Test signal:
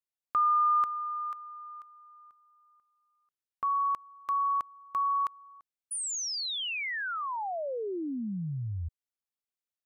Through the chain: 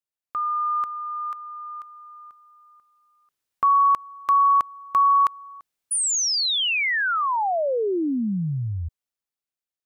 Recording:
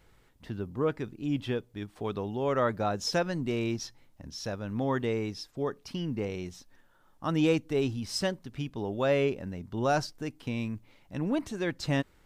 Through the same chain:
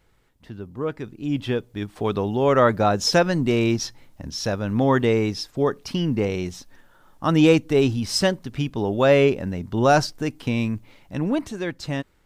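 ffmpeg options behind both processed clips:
-af "dynaudnorm=f=260:g=11:m=3.98,volume=0.891"

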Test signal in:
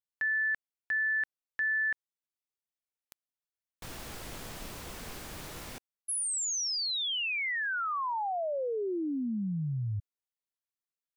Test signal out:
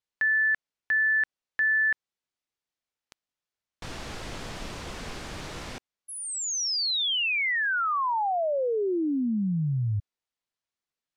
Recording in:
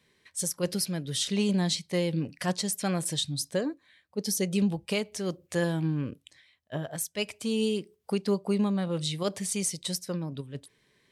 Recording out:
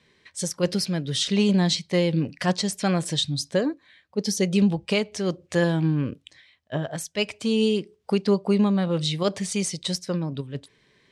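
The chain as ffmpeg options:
-af "lowpass=6200,volume=2"

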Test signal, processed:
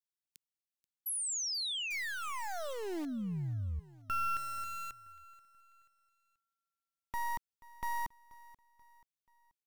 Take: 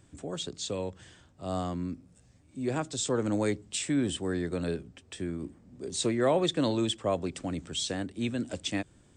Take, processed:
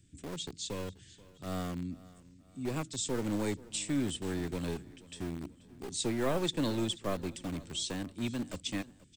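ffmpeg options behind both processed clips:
-filter_complex "[0:a]acrossover=split=370|1900[s0][s1][s2];[s1]acrusher=bits=4:dc=4:mix=0:aa=0.000001[s3];[s0][s3][s2]amix=inputs=3:normalize=0,aecho=1:1:483|966|1449:0.0944|0.0415|0.0183,volume=0.708"

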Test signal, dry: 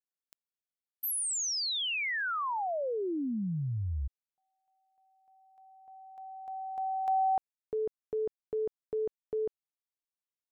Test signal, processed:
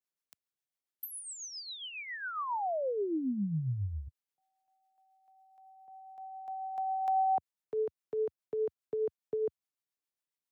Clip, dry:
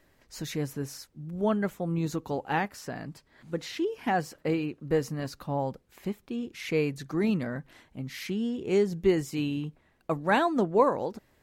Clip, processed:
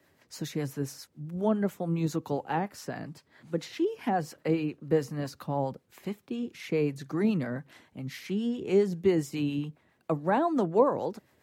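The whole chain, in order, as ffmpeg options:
-filter_complex "[0:a]highpass=f=86:w=0.5412,highpass=f=86:w=1.3066,acrossover=split=210|1100[s0][s1][s2];[s2]acompressor=threshold=0.00501:ratio=6:attack=62:release=70:detection=rms[s3];[s0][s1][s3]amix=inputs=3:normalize=0,acrossover=split=660[s4][s5];[s4]aeval=exprs='val(0)*(1-0.5/2+0.5/2*cos(2*PI*7.3*n/s))':c=same[s6];[s5]aeval=exprs='val(0)*(1-0.5/2-0.5/2*cos(2*PI*7.3*n/s))':c=same[s7];[s6][s7]amix=inputs=2:normalize=0,volume=1.33"

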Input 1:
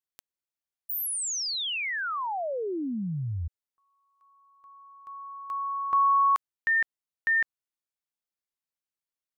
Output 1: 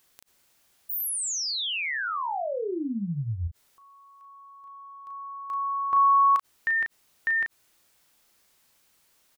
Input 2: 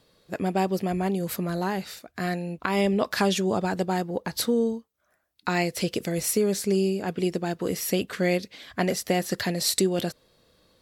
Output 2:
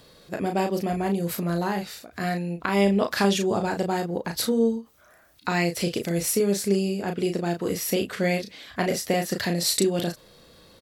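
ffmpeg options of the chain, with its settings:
-filter_complex "[0:a]asplit=2[s0][s1];[s1]adelay=35,volume=0.531[s2];[s0][s2]amix=inputs=2:normalize=0,acompressor=mode=upward:threshold=0.01:ratio=2.5:attack=0.15:release=33:knee=2.83:detection=peak"

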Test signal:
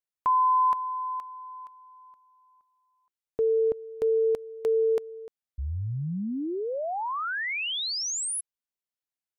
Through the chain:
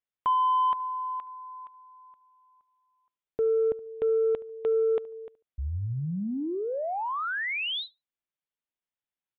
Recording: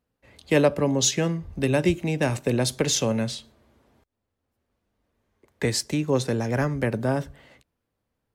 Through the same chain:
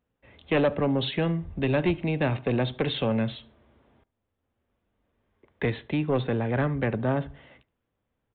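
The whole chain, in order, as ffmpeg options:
-filter_complex "[0:a]aresample=8000,asoftclip=type=tanh:threshold=0.15,aresample=44100,asplit=2[s0][s1];[s1]adelay=72,lowpass=f=1700:p=1,volume=0.112,asplit=2[s2][s3];[s3]adelay=72,lowpass=f=1700:p=1,volume=0.27[s4];[s0][s2][s4]amix=inputs=3:normalize=0"

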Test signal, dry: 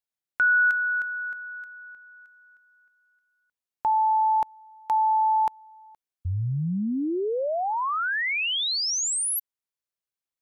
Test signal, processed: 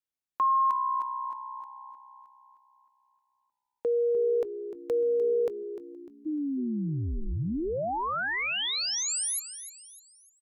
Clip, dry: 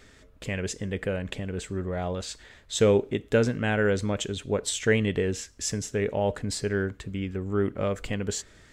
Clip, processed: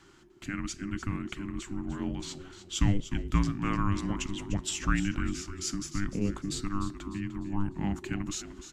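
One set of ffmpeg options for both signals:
-filter_complex "[0:a]asplit=5[s0][s1][s2][s3][s4];[s1]adelay=300,afreqshift=-63,volume=0.251[s5];[s2]adelay=600,afreqshift=-126,volume=0.0977[s6];[s3]adelay=900,afreqshift=-189,volume=0.038[s7];[s4]adelay=1200,afreqshift=-252,volume=0.015[s8];[s0][s5][s6][s7][s8]amix=inputs=5:normalize=0,afreqshift=-400,volume=0.631"

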